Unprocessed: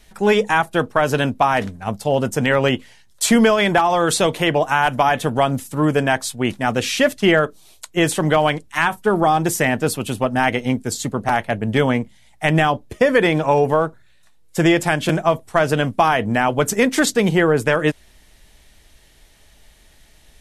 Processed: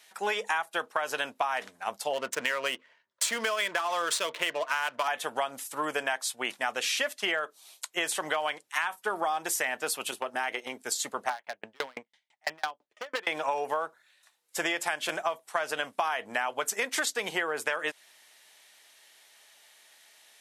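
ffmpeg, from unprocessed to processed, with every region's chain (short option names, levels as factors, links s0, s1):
-filter_complex "[0:a]asettb=1/sr,asplit=3[s0][s1][s2];[s0]atrim=end=2.134[s3];[s1]atrim=start=2.13:end=5.08,asetpts=PTS-STARTPTS,afade=t=in:d=0.004:c=qsin,afade=t=out:st=2.946:d=0.004:c=qsin,highshelf=f=4300:g=5,adynamicsmooth=sensitivity=4:basefreq=1100,asuperstop=centerf=790:order=4:qfactor=4.3[s4];[s2]atrim=start=5.076[s5];[s3][s4]acrossfade=d=0.004:c1=hsin:c2=qsin[s6];[s6][s5]acrossfade=d=0.004:c1=qsin:c2=hsin,asettb=1/sr,asplit=3[s7][s8][s9];[s7]atrim=end=10.114[s10];[s8]atrim=start=10.11:end=10.79,asetpts=PTS-STARTPTS,afade=t=in:d=0.004:c=qsin,afade=t=out:st=0.676:d=0.004:c=qsin,agate=range=0.447:threshold=0.0562:ratio=16:release=100:detection=peak,equalizer=f=370:t=o:w=0.32:g=8,acompressor=threshold=0.126:ratio=4:attack=3.2:release=140:knee=1:detection=peak[s11];[s9]atrim=start=10.786[s12];[s10][s11]acrossfade=d=0.004:c1=hsin:c2=qsin[s13];[s13][s12]acrossfade=d=0.004:c1=qsin:c2=hsin,asettb=1/sr,asplit=3[s14][s15][s16];[s14]atrim=end=11.304[s17];[s15]atrim=start=11.3:end=13.27,asetpts=PTS-STARTPTS,afade=t=in:d=0.004:c=qsin,afade=t=out:st=1.966:d=0.004:c=qsin,lowpass=4800,aeval=exprs='0.335*(abs(mod(val(0)/0.335+3,4)-2)-1)':c=same,aeval=exprs='val(0)*pow(10,-39*if(lt(mod(6*n/s,1),2*abs(6)/1000),1-mod(6*n/s,1)/(2*abs(6)/1000),(mod(6*n/s,1)-2*abs(6)/1000)/(1-2*abs(6)/1000))/20)':c=same[s18];[s16]atrim=start=13.266[s19];[s17][s18]acrossfade=d=0.004:c1=hsin:c2=qsin[s20];[s20][s19]acrossfade=d=0.004:c1=qsin:c2=hsin,highpass=780,acompressor=threshold=0.0631:ratio=6,volume=0.794"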